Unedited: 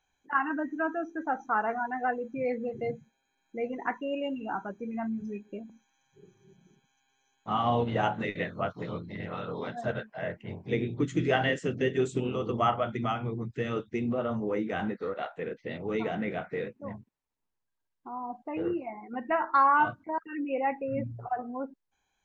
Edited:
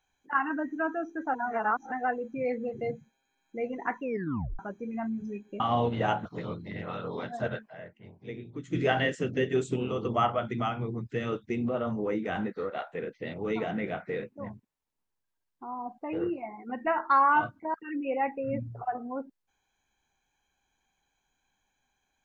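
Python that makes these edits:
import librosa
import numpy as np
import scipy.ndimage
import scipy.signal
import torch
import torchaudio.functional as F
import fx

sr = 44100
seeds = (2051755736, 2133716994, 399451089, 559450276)

y = fx.edit(x, sr, fx.reverse_span(start_s=1.34, length_s=0.58),
    fx.tape_stop(start_s=4.02, length_s=0.57),
    fx.cut(start_s=5.6, length_s=1.95),
    fx.cut(start_s=8.2, length_s=0.49),
    fx.fade_down_up(start_s=10.12, length_s=1.08, db=-11.0, fade_s=0.38, curve='exp'), tone=tone)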